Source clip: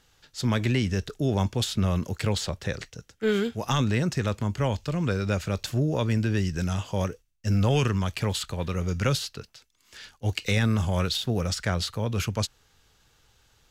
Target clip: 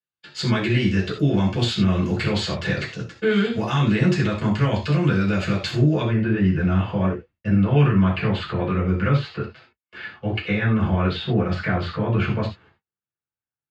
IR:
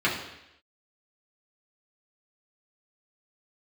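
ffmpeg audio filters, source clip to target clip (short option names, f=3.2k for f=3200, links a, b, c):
-filter_complex "[0:a]highpass=f=100:p=1,agate=range=-45dB:threshold=-56dB:ratio=16:detection=peak,asetnsamples=n=441:p=0,asendcmd='6.03 lowpass f 1900',lowpass=8.2k,alimiter=level_in=0.5dB:limit=-24dB:level=0:latency=1:release=150,volume=-0.5dB[a];[1:a]atrim=start_sample=2205,afade=t=out:st=0.15:d=0.01,atrim=end_sample=7056[b];[a][b]afir=irnorm=-1:irlink=0"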